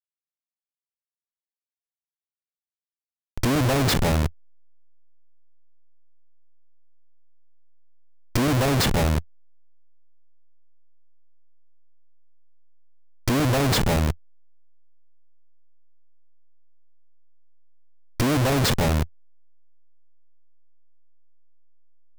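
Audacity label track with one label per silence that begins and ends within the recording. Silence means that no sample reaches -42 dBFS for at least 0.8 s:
4.300000	8.360000	silence
9.220000	13.280000	silence
14.150000	18.200000	silence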